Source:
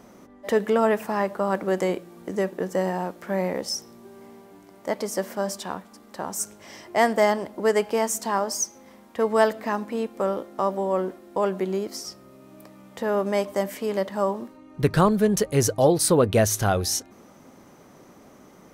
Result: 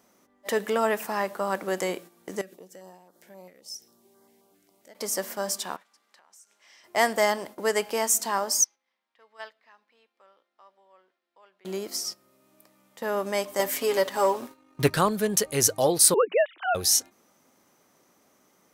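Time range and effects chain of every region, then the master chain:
2.41–4.95 compressor 5:1, threshold -36 dBFS + stepped notch 7.5 Hz 940–2500 Hz
5.76–6.84 compressor, threshold -38 dBFS + band-pass 2300 Hz, Q 0.62
8.64–11.65 band-pass 7400 Hz, Q 0.75 + air absorption 360 m
13.59–14.9 comb 7.3 ms, depth 68% + sample leveller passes 1
16.14–16.75 sine-wave speech + steep high-pass 250 Hz
whole clip: gate -38 dBFS, range -10 dB; tilt +2.5 dB/oct; gain -2 dB

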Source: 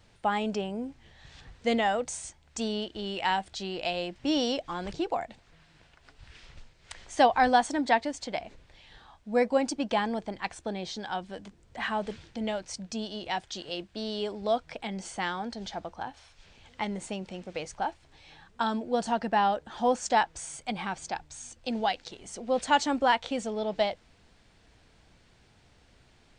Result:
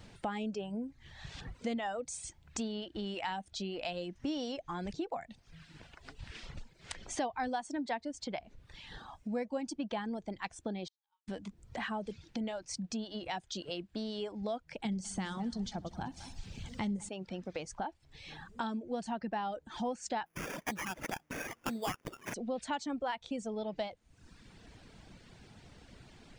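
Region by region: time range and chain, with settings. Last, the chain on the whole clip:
10.87–11.28 bell 1600 Hz -11 dB 0.63 oct + flipped gate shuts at -31 dBFS, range -41 dB + brick-wall FIR high-pass 800 Hz
14.85–17.09 tone controls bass +13 dB, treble +9 dB + multi-head echo 64 ms, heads first and third, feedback 47%, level -13.5 dB
20.26–22.34 weighting filter D + sample-rate reducer 4100 Hz
whole clip: reverb removal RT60 0.77 s; bell 200 Hz +6 dB 1.6 oct; compressor 3:1, threshold -45 dBFS; gain +5 dB

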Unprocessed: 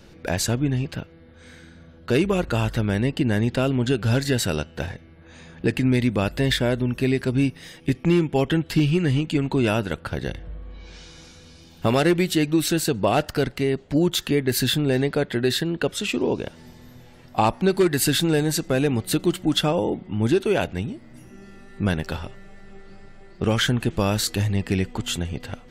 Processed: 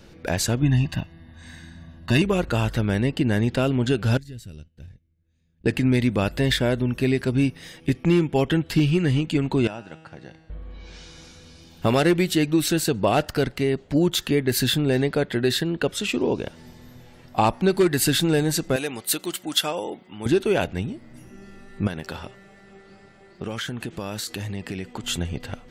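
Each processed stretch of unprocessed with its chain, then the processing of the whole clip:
0.62–2.22 notch 840 Hz, Q 13 + comb 1.1 ms, depth 98%
4.17–5.66 passive tone stack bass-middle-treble 10-0-1 + gate -54 dBFS, range -9 dB
9.67–10.5 speaker cabinet 120–8100 Hz, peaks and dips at 440 Hz -3 dB, 790 Hz +6 dB, 3400 Hz -5 dB + resonator 160 Hz, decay 1.7 s, mix 80%
18.76–20.26 HPF 880 Hz 6 dB/oct + high shelf 7700 Hz +10 dB
21.87–25.04 HPF 160 Hz 6 dB/oct + compressor 5:1, threshold -27 dBFS
whole clip: dry

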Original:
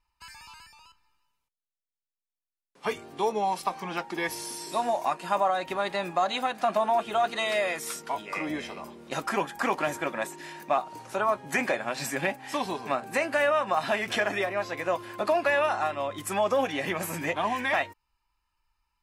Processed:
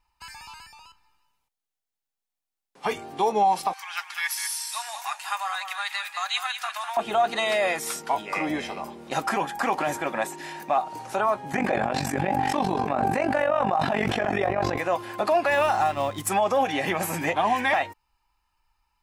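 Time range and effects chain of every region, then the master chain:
3.73–6.97 HPF 1300 Hz 24 dB/oct + high shelf 7000 Hz +6 dB + echo 0.198 s -8.5 dB
11.52–14.78 tilt -2.5 dB/oct + AM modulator 47 Hz, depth 65% + sustainer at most 28 dB/s
15.51–16.29 G.711 law mismatch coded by A + tone controls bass +7 dB, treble +5 dB
whole clip: bell 790 Hz +8 dB 0.25 oct; limiter -17.5 dBFS; gain +4 dB

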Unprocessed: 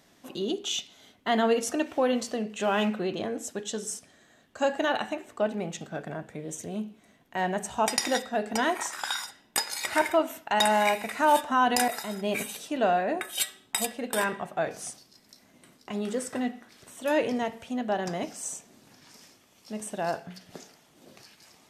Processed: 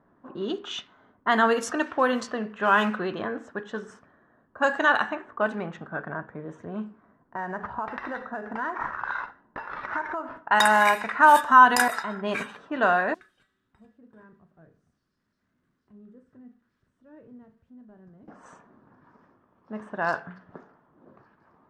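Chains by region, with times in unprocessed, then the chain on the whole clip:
6.86–10.37 high shelf 5900 Hz -6.5 dB + compressor 16:1, threshold -30 dBFS + sample-rate reducer 7700 Hz
13.14–18.28 switching spikes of -24 dBFS + passive tone stack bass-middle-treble 10-0-1 + doubler 37 ms -12 dB
whole clip: low-pass opened by the level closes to 670 Hz, open at -21 dBFS; band shelf 1300 Hz +11.5 dB 1.1 oct

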